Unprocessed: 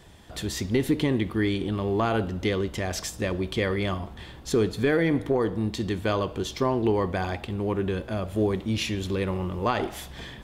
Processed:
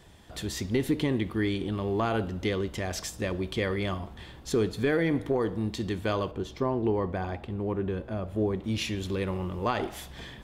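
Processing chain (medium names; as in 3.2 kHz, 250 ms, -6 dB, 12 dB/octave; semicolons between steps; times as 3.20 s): 6.31–8.64 s: treble shelf 2.3 kHz -11.5 dB; trim -3 dB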